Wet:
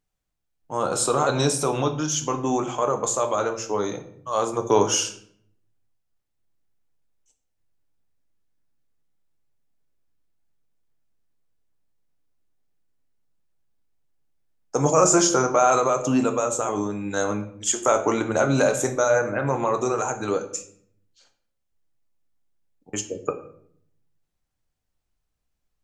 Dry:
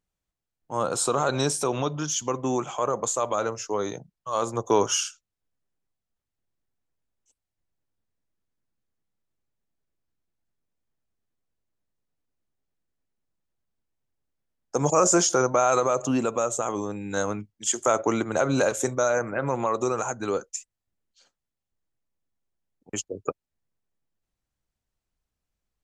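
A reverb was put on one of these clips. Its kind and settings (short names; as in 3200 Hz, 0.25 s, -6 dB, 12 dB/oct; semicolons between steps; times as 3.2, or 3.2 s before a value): shoebox room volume 110 m³, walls mixed, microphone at 0.42 m; gain +1.5 dB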